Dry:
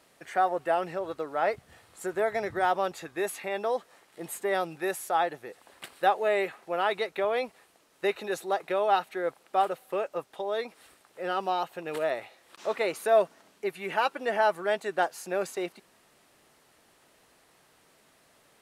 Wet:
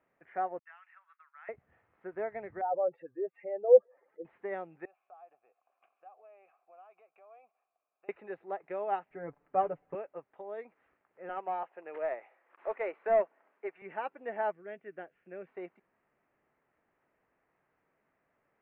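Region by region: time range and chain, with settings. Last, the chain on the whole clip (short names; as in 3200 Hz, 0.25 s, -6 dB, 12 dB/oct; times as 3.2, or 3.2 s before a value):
0.59–1.49 steep high-pass 1200 Hz + expander -50 dBFS
2.61–4.25 spectral contrast raised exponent 2.5 + bell 510 Hz +14.5 dB 0.32 oct
4.85–8.09 compressor 4:1, threshold -33 dBFS + vowel filter a + high shelf 2300 Hz +10 dB
9.1–9.95 RIAA curve playback + comb 6.9 ms, depth 80%
11.29–13.82 HPF 320 Hz + overdrive pedal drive 13 dB, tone 1700 Hz, clips at -12.5 dBFS
14.52–15.47 brick-wall FIR low-pass 3600 Hz + bell 910 Hz -14.5 dB 0.95 oct
whole clip: steep low-pass 2300 Hz 36 dB/oct; dynamic EQ 1300 Hz, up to -6 dB, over -42 dBFS, Q 1.5; upward expander 1.5:1, over -37 dBFS; gain -1 dB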